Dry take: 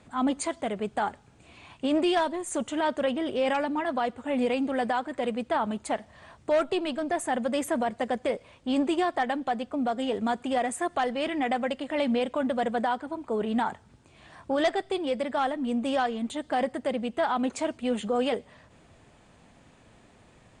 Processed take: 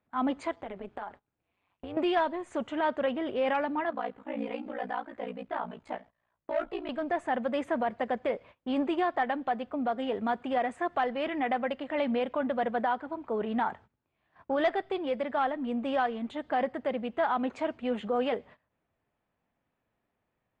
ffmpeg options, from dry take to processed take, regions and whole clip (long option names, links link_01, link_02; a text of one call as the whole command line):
ffmpeg -i in.wav -filter_complex "[0:a]asettb=1/sr,asplit=3[link_01][link_02][link_03];[link_01]atrim=end=0.514[link_04];[link_02]atrim=start=0.51:end=1.97,asetpts=PTS-STARTPTS,afade=type=in:duration=0.004:curve=qsin,afade=type=out:start_time=1.456:duration=0.004:curve=qsin,acompressor=threshold=-29dB:ratio=10:attack=3.2:release=140:knee=1:detection=peak,tremolo=f=190:d=0.824[link_05];[link_03]atrim=start=1.966[link_06];[link_04][link_05]acrossfade=duration=0.004:curve1=hsin:curve2=qsin[link_07];[link_07][link_06]acrossfade=duration=0.004:curve1=qsin:curve2=hsin,asettb=1/sr,asplit=3[link_08][link_09][link_10];[link_08]atrim=end=3.904[link_11];[link_09]atrim=start=3.9:end=6.89,asetpts=PTS-STARTPTS,afade=type=in:duration=0.004:curve=qsin,afade=type=out:start_time=2.986:duration=0.004:curve=qsin,flanger=delay=15.5:depth=2.2:speed=1.7,aeval=exprs='val(0)*sin(2*PI*29*n/s)':channel_layout=same[link_12];[link_10]atrim=start=6.886[link_13];[link_11][link_12]acrossfade=duration=0.004:curve1=hsin:curve2=qsin[link_14];[link_14][link_13]acrossfade=duration=0.004:curve1=qsin:curve2=hsin,agate=range=-21dB:threshold=-47dB:ratio=16:detection=peak,lowpass=2400,lowshelf=frequency=400:gain=-5.5" out.wav